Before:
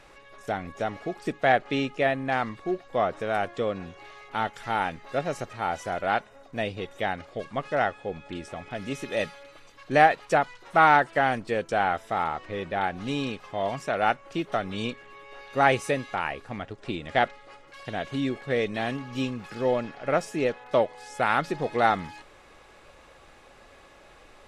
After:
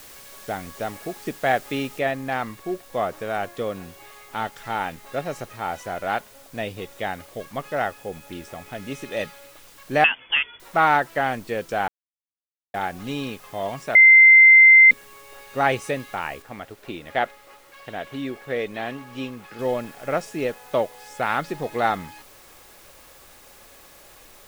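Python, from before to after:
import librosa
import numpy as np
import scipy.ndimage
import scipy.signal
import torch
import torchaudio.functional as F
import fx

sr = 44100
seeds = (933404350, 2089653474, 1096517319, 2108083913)

y = fx.noise_floor_step(x, sr, seeds[0], at_s=1.99, before_db=-45, after_db=-51, tilt_db=0.0)
y = fx.freq_invert(y, sr, carrier_hz=3400, at=(10.04, 10.6))
y = fx.bass_treble(y, sr, bass_db=-6, treble_db=-7, at=(16.42, 19.59))
y = fx.edit(y, sr, fx.silence(start_s=11.88, length_s=0.86),
    fx.bleep(start_s=13.95, length_s=0.96, hz=2080.0, db=-7.0), tone=tone)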